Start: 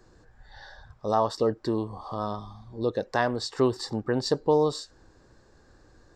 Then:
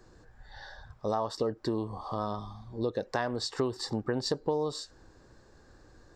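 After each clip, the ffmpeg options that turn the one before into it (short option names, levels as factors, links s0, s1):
-af "acompressor=threshold=0.0447:ratio=4"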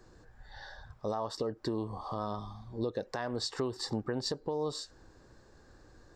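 -af "alimiter=limit=0.0841:level=0:latency=1:release=218,volume=0.891"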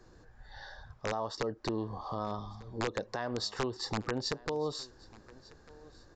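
-filter_complex "[0:a]acrossover=split=990[s0][s1];[s0]aeval=exprs='(mod(16.8*val(0)+1,2)-1)/16.8':c=same[s2];[s2][s1]amix=inputs=2:normalize=0,aresample=16000,aresample=44100,aecho=1:1:1197:0.0794"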